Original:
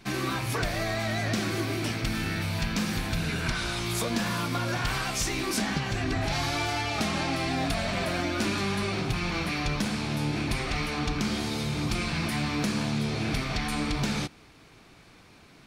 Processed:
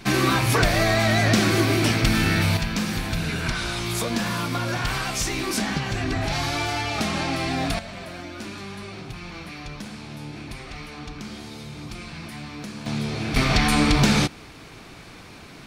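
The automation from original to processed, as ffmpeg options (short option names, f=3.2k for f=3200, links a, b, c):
-af "asetnsamples=n=441:p=0,asendcmd='2.57 volume volume 3dB;7.79 volume volume -7.5dB;12.86 volume volume 1.5dB;13.36 volume volume 10.5dB',volume=9.5dB"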